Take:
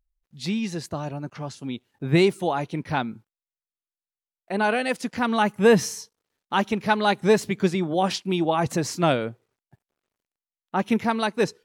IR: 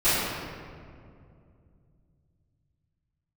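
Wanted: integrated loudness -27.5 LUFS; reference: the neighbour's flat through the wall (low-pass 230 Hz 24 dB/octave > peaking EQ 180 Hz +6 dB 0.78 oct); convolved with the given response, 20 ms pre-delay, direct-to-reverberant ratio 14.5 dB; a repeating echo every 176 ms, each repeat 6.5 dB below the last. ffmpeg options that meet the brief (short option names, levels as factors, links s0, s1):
-filter_complex "[0:a]aecho=1:1:176|352|528|704|880|1056:0.473|0.222|0.105|0.0491|0.0231|0.0109,asplit=2[s0][s1];[1:a]atrim=start_sample=2205,adelay=20[s2];[s1][s2]afir=irnorm=-1:irlink=0,volume=0.0251[s3];[s0][s3]amix=inputs=2:normalize=0,lowpass=f=230:w=0.5412,lowpass=f=230:w=1.3066,equalizer=f=180:t=o:w=0.78:g=6,volume=0.794"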